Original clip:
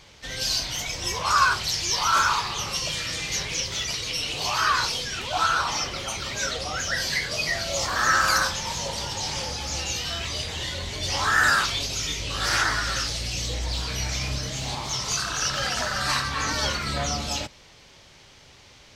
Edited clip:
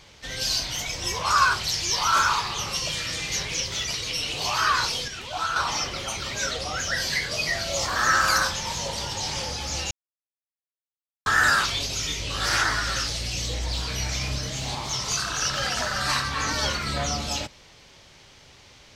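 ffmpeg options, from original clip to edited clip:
ffmpeg -i in.wav -filter_complex "[0:a]asplit=5[link_01][link_02][link_03][link_04][link_05];[link_01]atrim=end=5.082[link_06];[link_02]atrim=start=5.078:end=5.562,asetpts=PTS-STARTPTS,volume=-5dB[link_07];[link_03]atrim=start=5.558:end=9.91,asetpts=PTS-STARTPTS,afade=type=out:start_time=4.348:duration=0.004:curve=hsin[link_08];[link_04]atrim=start=9.91:end=11.26,asetpts=PTS-STARTPTS,volume=0[link_09];[link_05]atrim=start=11.26,asetpts=PTS-STARTPTS,afade=type=in:duration=0.004:curve=hsin[link_10];[link_06][link_07]acrossfade=duration=0.004:curve1=hsin:curve2=hsin[link_11];[link_08][link_09][link_10]concat=n=3:v=0:a=1[link_12];[link_11][link_12]acrossfade=duration=0.004:curve1=hsin:curve2=hsin" out.wav

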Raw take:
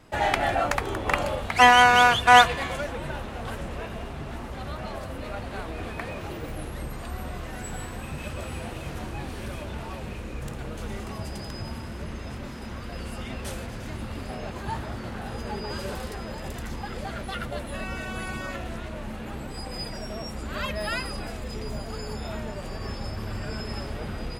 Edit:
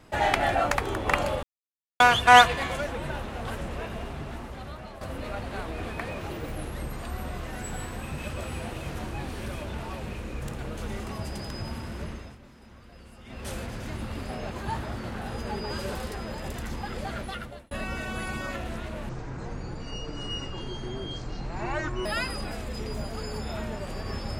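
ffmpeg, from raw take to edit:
ffmpeg -i in.wav -filter_complex "[0:a]asplit=9[link_01][link_02][link_03][link_04][link_05][link_06][link_07][link_08][link_09];[link_01]atrim=end=1.43,asetpts=PTS-STARTPTS,afade=type=out:start_time=1.426:duration=0.004:curve=hsin[link_10];[link_02]atrim=start=1.43:end=2,asetpts=PTS-STARTPTS,volume=0[link_11];[link_03]atrim=start=2:end=5.01,asetpts=PTS-STARTPTS,afade=type=in:duration=0.004:curve=hsin,afade=type=out:start_time=2.12:duration=0.89:silence=0.334965[link_12];[link_04]atrim=start=5.01:end=12.37,asetpts=PTS-STARTPTS,afade=type=in:duration=0.004:curve=hsin:silence=0.334965,afade=type=out:start_time=7.03:duration=0.33:silence=0.199526[link_13];[link_05]atrim=start=12.37:end=13.23,asetpts=PTS-STARTPTS,volume=-14dB[link_14];[link_06]atrim=start=13.23:end=17.71,asetpts=PTS-STARTPTS,afade=type=in:duration=0.33:silence=0.199526,afade=type=out:start_time=3.96:duration=0.52[link_15];[link_07]atrim=start=17.71:end=19.094,asetpts=PTS-STARTPTS,afade=type=in:duration=0.004:curve=hsin[link_16];[link_08]atrim=start=19.09:end=20.81,asetpts=PTS-STARTPTS,asetrate=25578,aresample=44100,atrim=end_sample=130779,asetpts=PTS-STARTPTS[link_17];[link_09]atrim=start=20.806[link_18];[link_10][link_11][link_12][link_13][link_14][link_15][link_16]concat=n=7:v=0:a=1[link_19];[link_19][link_17]acrossfade=duration=0.004:curve1=hsin:curve2=hsin[link_20];[link_20][link_18]acrossfade=duration=0.004:curve1=hsin:curve2=hsin" out.wav

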